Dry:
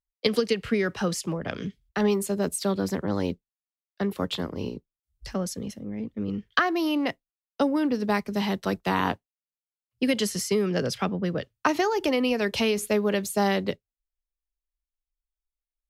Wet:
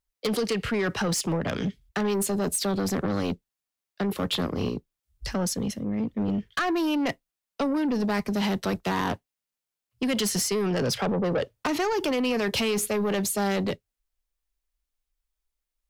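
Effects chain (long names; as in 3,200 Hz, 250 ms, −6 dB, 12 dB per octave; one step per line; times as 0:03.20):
0:10.97–0:11.67: parametric band 520 Hz +11.5 dB 1.3 octaves
in parallel at −2 dB: compressor whose output falls as the input rises −28 dBFS, ratio −0.5
on the sum: soft clipping −21 dBFS, distortion −12 dB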